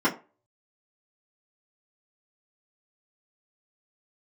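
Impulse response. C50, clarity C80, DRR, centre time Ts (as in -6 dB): 15.0 dB, 19.5 dB, -9.5 dB, 17 ms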